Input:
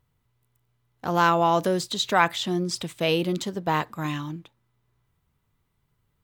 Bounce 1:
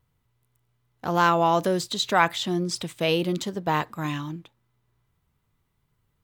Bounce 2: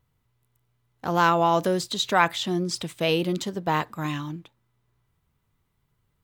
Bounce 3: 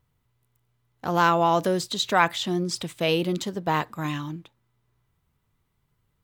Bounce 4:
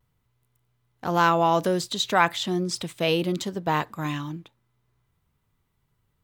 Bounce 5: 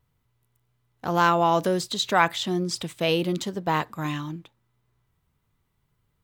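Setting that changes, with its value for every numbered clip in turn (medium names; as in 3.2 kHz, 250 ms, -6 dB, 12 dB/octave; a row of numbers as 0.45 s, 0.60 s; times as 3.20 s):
vibrato, rate: 2.6 Hz, 6.9 Hz, 11 Hz, 0.46 Hz, 1.7 Hz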